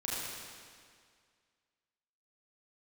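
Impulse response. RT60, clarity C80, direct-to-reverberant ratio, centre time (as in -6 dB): 2.0 s, -1.5 dB, -7.0 dB, 0.147 s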